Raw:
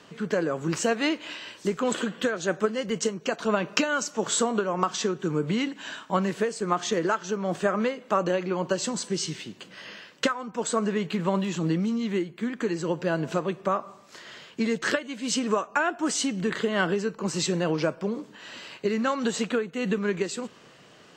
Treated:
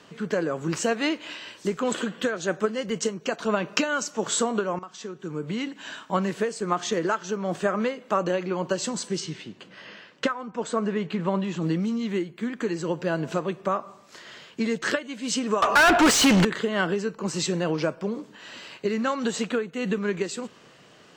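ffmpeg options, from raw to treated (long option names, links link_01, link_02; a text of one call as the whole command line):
ffmpeg -i in.wav -filter_complex "[0:a]asettb=1/sr,asplit=3[link_01][link_02][link_03];[link_01]atrim=end=9.204[link_04];[link_02]atrim=start=9.2:end=11.62,asetpts=PTS-STARTPTS,afade=type=in:duration=0.004:curve=qsin,afade=type=out:start_time=2.416:duration=0.004:curve=qsin,aemphasis=mode=reproduction:type=50kf[link_05];[link_03]atrim=start=11.616[link_06];[link_04][link_05]acrossfade=duration=0.004:curve1=hsin:curve2=qsin[link_07];[link_07][link_06]acrossfade=duration=0.004:curve1=qsin:curve2=hsin,asettb=1/sr,asplit=3[link_08][link_09][link_10];[link_08]atrim=end=15.624[link_11];[link_09]atrim=start=15.62:end=16.45,asetpts=PTS-STARTPTS,afade=type=in:duration=0.004:curve=qsin,afade=type=out:start_time=0.826:duration=0.004:curve=qsin,asplit=2[link_12][link_13];[link_13]highpass=frequency=720:poles=1,volume=36dB,asoftclip=type=tanh:threshold=-9.5dB[link_14];[link_12][link_14]amix=inputs=2:normalize=0,lowpass=frequency=3400:poles=1,volume=-6dB[link_15];[link_10]atrim=start=16.446[link_16];[link_11][link_15]acrossfade=duration=0.004:curve1=hsin:curve2=qsin[link_17];[link_17][link_16]acrossfade=duration=0.004:curve1=qsin:curve2=hsin,asplit=2[link_18][link_19];[link_18]atrim=end=4.79,asetpts=PTS-STARTPTS,afade=type=out:start_time=4.786:duration=0.004:curve=hsin:silence=0.125893[link_20];[link_19]atrim=start=4.79,asetpts=PTS-STARTPTS,afade=type=in:duration=1.23:silence=0.125893[link_21];[link_20][link_21]concat=n=2:v=0:a=1" out.wav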